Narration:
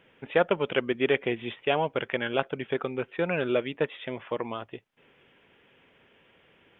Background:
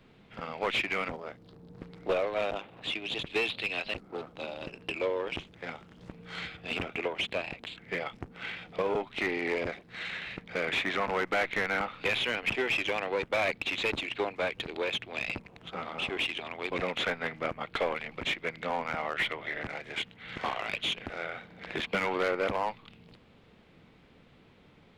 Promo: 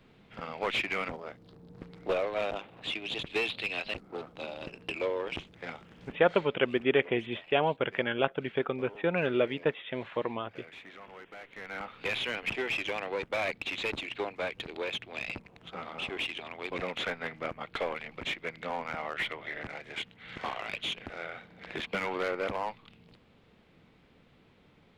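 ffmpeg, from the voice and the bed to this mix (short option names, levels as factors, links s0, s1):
-filter_complex "[0:a]adelay=5850,volume=0.891[s0];[1:a]volume=5.62,afade=t=out:st=6.11:d=0.36:silence=0.125893,afade=t=in:st=11.52:d=0.6:silence=0.158489[s1];[s0][s1]amix=inputs=2:normalize=0"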